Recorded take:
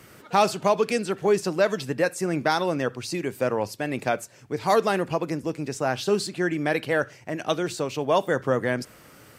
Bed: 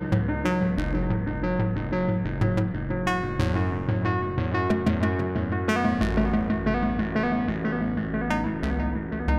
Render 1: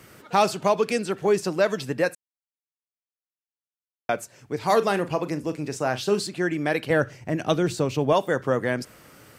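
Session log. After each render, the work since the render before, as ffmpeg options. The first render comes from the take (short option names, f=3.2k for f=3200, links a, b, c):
-filter_complex "[0:a]asettb=1/sr,asplit=3[a][b][c];[a]atrim=end=4.664[d];[b]atrim=start=4.66:end=6.2,asetpts=PTS-STARTPTS,afade=t=in:d=0.004:c=qsin,afade=t=out:st=1.536:d=0.004:c=qsin,asplit=2[e][f];[f]adelay=40,volume=-13.5dB[g];[e][g]amix=inputs=2:normalize=0,atrim=end_sample=67914[h];[c]atrim=start=6.196[i];[d][h]acrossfade=d=0.004:c1=hsin:c2=qsin[j];[j][i]acrossfade=d=0.004:c1=qsin:c2=hsin,asettb=1/sr,asplit=3[k][l][m];[k]atrim=end=6.904[n];[l]atrim=start=6.9:end=8.13,asetpts=PTS-STARTPTS,afade=t=in:d=0.004:c=qsin,afade=t=out:st=1.226:d=0.004:c=qsin,lowshelf=f=270:g=11[o];[m]atrim=start=8.126[p];[n][o]acrossfade=d=0.004:c1=hsin:c2=qsin[q];[q][p]acrossfade=d=0.004:c1=qsin:c2=hsin,asplit=3[r][s][t];[r]atrim=end=2.15,asetpts=PTS-STARTPTS,afade=t=out:st=2.146:d=0.004:c=hsin[u];[s]atrim=start=2.15:end=4.09,asetpts=PTS-STARTPTS,volume=0[v];[t]atrim=start=4.09,asetpts=PTS-STARTPTS,afade=t=in:d=0.004:c=hsin[w];[u][v][w]concat=n=3:v=0:a=1"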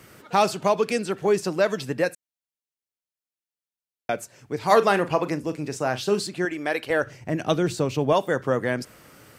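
-filter_complex "[0:a]asettb=1/sr,asplit=3[a][b][c];[a]atrim=end=2.044[d];[b]atrim=start=2.04:end=4.21,asetpts=PTS-STARTPTS,afade=t=in:d=0.004:c=qsin,afade=t=out:st=2.166:d=0.004:c=qsin,equalizer=f=1.1k:t=o:w=0.77:g=-5.5[e];[c]atrim=start=4.206[f];[d][e]acrossfade=d=0.004:c1=hsin:c2=qsin[g];[g][f]acrossfade=d=0.004:c1=qsin:c2=hsin,asettb=1/sr,asplit=3[h][i][j];[h]atrim=end=4.714[k];[i]atrim=start=4.71:end=5.36,asetpts=PTS-STARTPTS,afade=t=in:d=0.004:c=qsin,afade=t=out:st=0.646:d=0.004:c=qsin,equalizer=f=1.3k:w=0.42:g=5[l];[j]atrim=start=5.356[m];[k][l]acrossfade=d=0.004:c1=hsin:c2=qsin[n];[n][m]acrossfade=d=0.004:c1=qsin:c2=hsin,asettb=1/sr,asplit=3[o][p][q];[o]atrim=end=6.454[r];[p]atrim=start=6.45:end=7.07,asetpts=PTS-STARTPTS,afade=t=in:d=0.004:c=qsin,afade=t=out:st=0.616:d=0.004:c=qsin,equalizer=f=160:t=o:w=1.3:g=-13[s];[q]atrim=start=7.066[t];[r][s]acrossfade=d=0.004:c1=hsin:c2=qsin[u];[u][t]acrossfade=d=0.004:c1=qsin:c2=hsin"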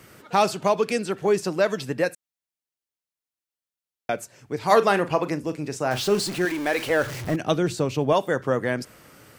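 -filter_complex "[0:a]asettb=1/sr,asplit=3[a][b][c];[a]atrim=end=5.914[d];[b]atrim=start=5.91:end=7.36,asetpts=PTS-STARTPTS,afade=t=in:d=0.004:c=qsin,afade=t=out:st=1.446:d=0.004:c=qsin,aeval=exprs='val(0)+0.5*0.0335*sgn(val(0))':c=same[e];[c]atrim=start=7.356[f];[d][e]acrossfade=d=0.004:c1=hsin:c2=qsin[g];[g][f]acrossfade=d=0.004:c1=qsin:c2=hsin"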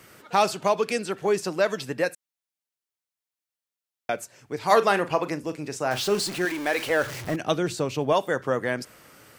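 -af "lowshelf=f=360:g=-5.5"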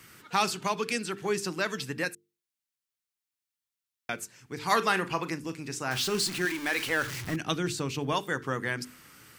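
-af "equalizer=f=600:w=1.4:g=-13,bandreject=f=50:t=h:w=6,bandreject=f=100:t=h:w=6,bandreject=f=150:t=h:w=6,bandreject=f=200:t=h:w=6,bandreject=f=250:t=h:w=6,bandreject=f=300:t=h:w=6,bandreject=f=350:t=h:w=6,bandreject=f=400:t=h:w=6,bandreject=f=450:t=h:w=6"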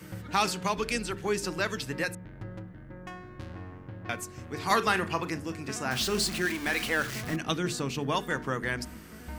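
-filter_complex "[1:a]volume=-17.5dB[a];[0:a][a]amix=inputs=2:normalize=0"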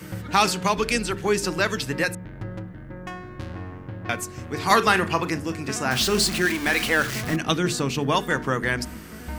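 -af "volume=7dB"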